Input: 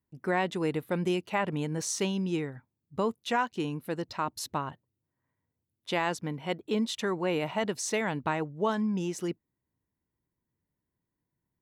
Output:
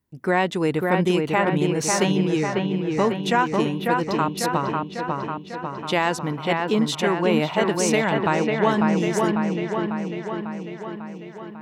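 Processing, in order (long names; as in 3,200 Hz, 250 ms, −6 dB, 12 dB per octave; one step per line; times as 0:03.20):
delay with a low-pass on its return 547 ms, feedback 63%, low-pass 2,800 Hz, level −3 dB
level +7.5 dB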